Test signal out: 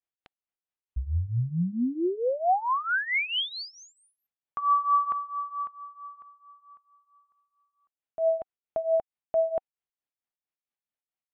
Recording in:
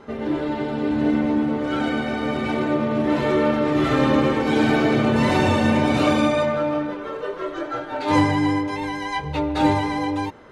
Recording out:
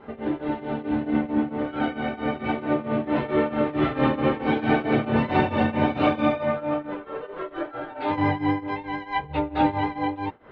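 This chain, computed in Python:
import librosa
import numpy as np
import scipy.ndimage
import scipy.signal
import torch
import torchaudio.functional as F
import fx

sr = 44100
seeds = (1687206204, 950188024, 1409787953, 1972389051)

y = scipy.signal.sosfilt(scipy.signal.butter(4, 3300.0, 'lowpass', fs=sr, output='sos'), x)
y = fx.peak_eq(y, sr, hz=760.0, db=5.0, octaves=0.24)
y = fx.tremolo_shape(y, sr, shape='triangle', hz=4.5, depth_pct=90)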